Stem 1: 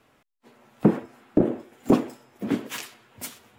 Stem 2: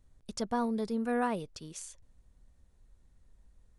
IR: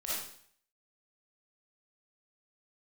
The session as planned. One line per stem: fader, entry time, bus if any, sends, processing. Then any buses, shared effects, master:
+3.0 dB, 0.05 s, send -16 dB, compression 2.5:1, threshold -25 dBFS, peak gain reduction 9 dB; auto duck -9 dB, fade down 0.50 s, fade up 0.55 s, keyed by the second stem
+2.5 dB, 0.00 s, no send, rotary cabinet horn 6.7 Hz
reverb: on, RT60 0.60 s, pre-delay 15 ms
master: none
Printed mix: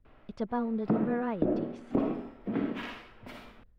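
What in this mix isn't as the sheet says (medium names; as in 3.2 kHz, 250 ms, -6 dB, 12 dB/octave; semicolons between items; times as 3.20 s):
stem 1: send -16 dB -> -8.5 dB; master: extra distance through air 390 m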